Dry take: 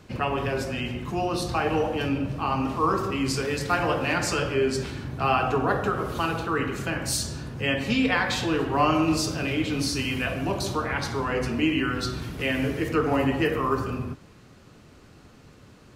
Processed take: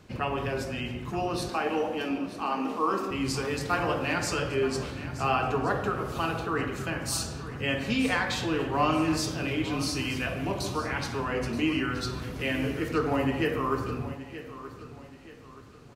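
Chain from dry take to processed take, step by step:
0:01.49–0:03.11: Butterworth high-pass 180 Hz 72 dB per octave
on a send: repeating echo 926 ms, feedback 38%, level −14 dB
on the sum: level −3.5 dB

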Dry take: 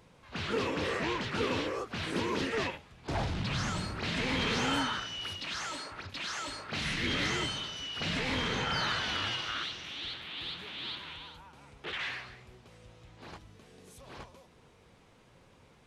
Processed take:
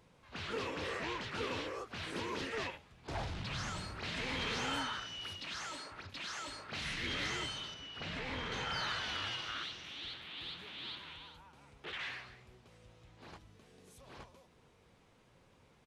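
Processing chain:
0:07.74–0:08.52: high-shelf EQ 4,000 Hz −11 dB
downsampling to 32,000 Hz
dynamic equaliser 210 Hz, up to −5 dB, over −45 dBFS, Q 0.74
level −5.5 dB

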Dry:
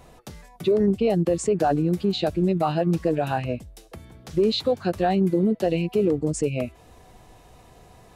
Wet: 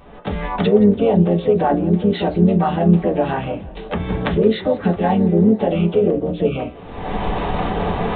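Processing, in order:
camcorder AGC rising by 48 dB per second
pitch-shifted copies added −12 semitones −10 dB, +3 semitones −6 dB, +7 semitones −16 dB
downsampling to 8,000 Hz
on a send at −2 dB: convolution reverb RT60 0.25 s, pre-delay 3 ms
on the sum: feedback echo with a swinging delay time 166 ms, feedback 66%, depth 154 cents, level −22 dB

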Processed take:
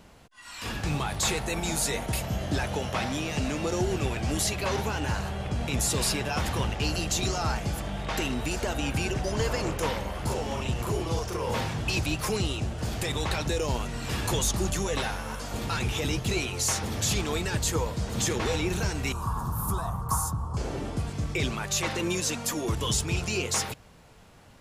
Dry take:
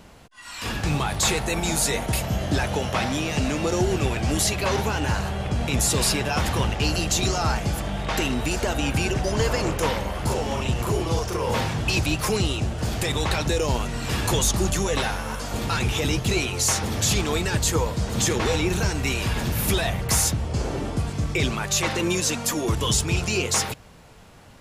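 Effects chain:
0:19.12–0:20.57: drawn EQ curve 170 Hz 0 dB, 240 Hz −6 dB, 610 Hz −9 dB, 1,100 Hz +13 dB, 2,100 Hz −26 dB, 10,000 Hz −2 dB
level −5 dB

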